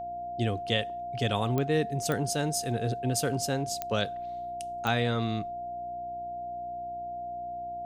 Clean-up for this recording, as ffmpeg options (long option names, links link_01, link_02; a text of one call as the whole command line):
ffmpeg -i in.wav -af "adeclick=threshold=4,bandreject=frequency=61.3:width_type=h:width=4,bandreject=frequency=122.6:width_type=h:width=4,bandreject=frequency=183.9:width_type=h:width=4,bandreject=frequency=245.2:width_type=h:width=4,bandreject=frequency=306.5:width_type=h:width=4,bandreject=frequency=367.8:width_type=h:width=4,bandreject=frequency=700:width=30" out.wav